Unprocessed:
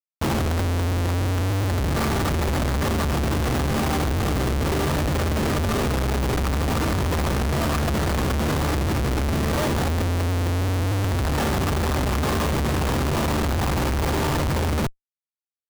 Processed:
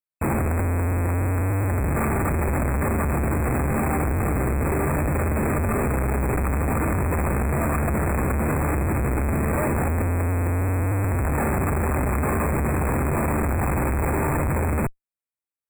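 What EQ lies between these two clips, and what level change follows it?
linear-phase brick-wall band-stop 2,600–7,300 Hz
0.0 dB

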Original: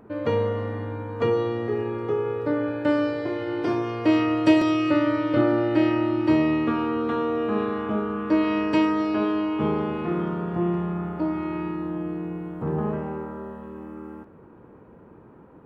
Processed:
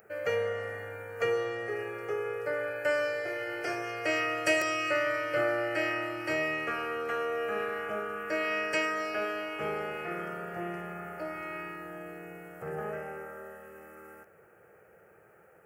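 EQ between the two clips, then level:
spectral tilt +4.5 dB per octave
phaser with its sweep stopped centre 1,000 Hz, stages 6
0.0 dB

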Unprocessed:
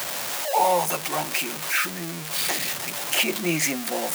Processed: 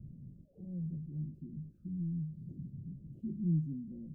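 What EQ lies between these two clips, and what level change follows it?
inverse Chebyshev low-pass filter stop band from 810 Hz, stop band 70 dB
low-shelf EQ 80 Hz +9 dB
+1.5 dB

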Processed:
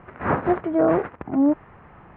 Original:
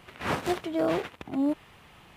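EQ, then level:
low-pass filter 1,700 Hz 24 dB per octave
high-frequency loss of the air 64 metres
+8.0 dB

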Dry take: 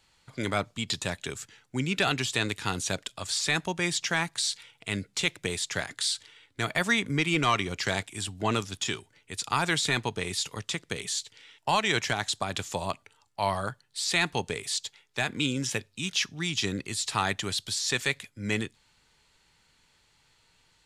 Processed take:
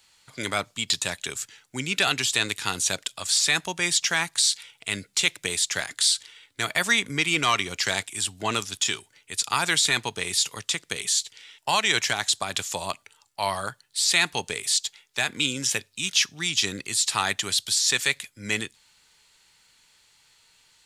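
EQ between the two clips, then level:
spectral tilt +2.5 dB per octave
low-shelf EQ 72 Hz +5.5 dB
+1.5 dB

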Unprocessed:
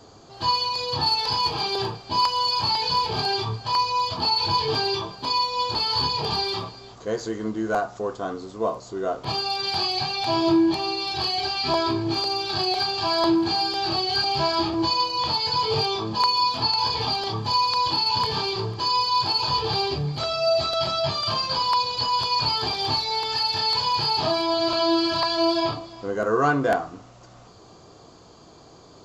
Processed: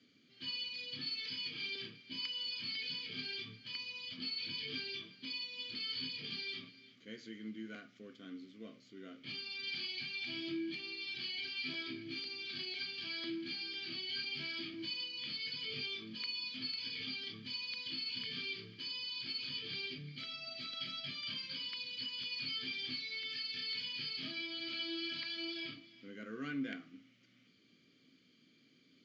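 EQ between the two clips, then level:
formant filter i
loudspeaker in its box 150–6,500 Hz, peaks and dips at 290 Hz −8 dB, 700 Hz −7 dB, 1,000 Hz −7 dB, 3,700 Hz −3 dB
parametric band 380 Hz −10.5 dB 1.3 octaves
+3.5 dB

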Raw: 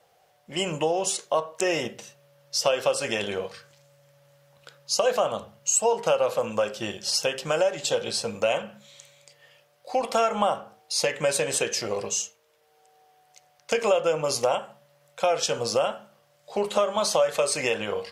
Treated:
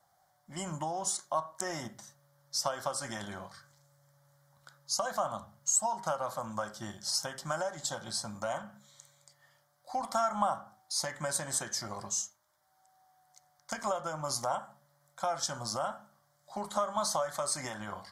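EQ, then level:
phaser with its sweep stopped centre 1,100 Hz, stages 4
−3.5 dB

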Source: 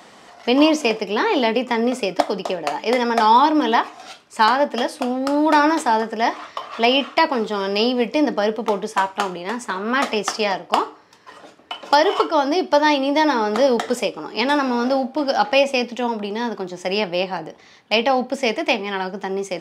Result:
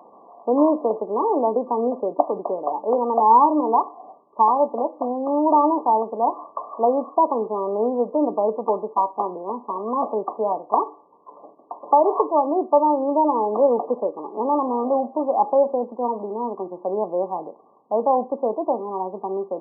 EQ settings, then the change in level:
high-pass filter 310 Hz 12 dB per octave
linear-phase brick-wall low-pass 1,200 Hz
0.0 dB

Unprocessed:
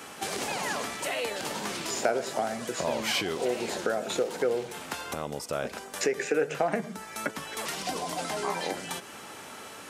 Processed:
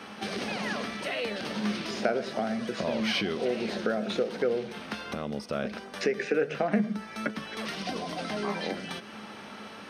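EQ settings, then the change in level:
Savitzky-Golay smoothing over 15 samples
parametric band 210 Hz +14.5 dB 0.2 octaves
dynamic equaliser 900 Hz, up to −7 dB, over −48 dBFS, Q 3
0.0 dB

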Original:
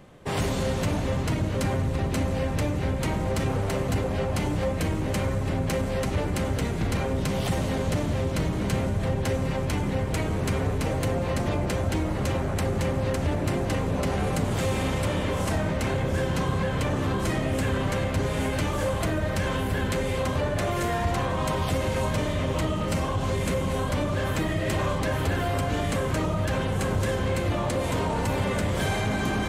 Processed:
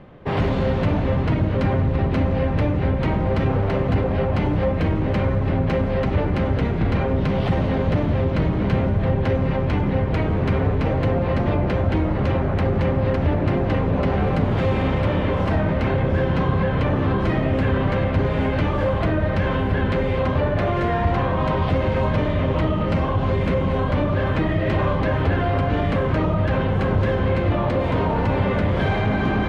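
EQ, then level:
high-frequency loss of the air 340 metres
+6.5 dB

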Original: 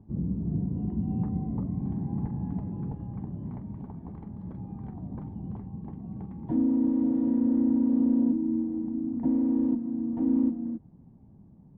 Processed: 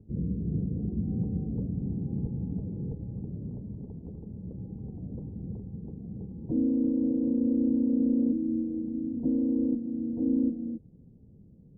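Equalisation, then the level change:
low-pass with resonance 480 Hz, resonance Q 4.9
high-frequency loss of the air 490 metres
low-shelf EQ 220 Hz +10.5 dB
−8.5 dB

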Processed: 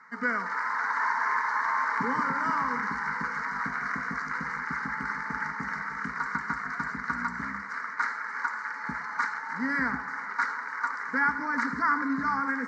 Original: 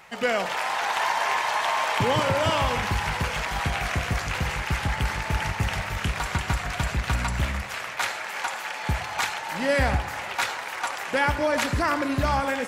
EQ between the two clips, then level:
loudspeaker in its box 230–4,800 Hz, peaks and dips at 260 Hz +7 dB, 420 Hz +3 dB, 820 Hz +7 dB, 1,500 Hz +3 dB, 2,100 Hz +7 dB
phaser with its sweep stopped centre 520 Hz, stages 8
phaser with its sweep stopped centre 1,400 Hz, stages 4
0.0 dB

